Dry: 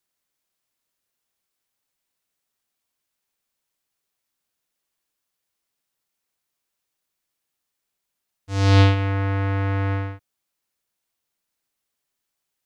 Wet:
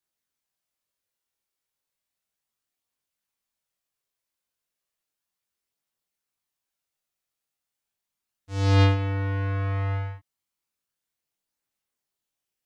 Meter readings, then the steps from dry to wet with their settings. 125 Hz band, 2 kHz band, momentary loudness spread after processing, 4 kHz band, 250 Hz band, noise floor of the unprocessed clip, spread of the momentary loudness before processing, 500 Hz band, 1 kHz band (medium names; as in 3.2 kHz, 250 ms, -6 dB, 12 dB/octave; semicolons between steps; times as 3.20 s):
-3.5 dB, -5.5 dB, 13 LU, -5.0 dB, -5.5 dB, -81 dBFS, 13 LU, -4.0 dB, -4.5 dB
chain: chorus voices 2, 0.17 Hz, delay 22 ms, depth 1.1 ms; trim -2.5 dB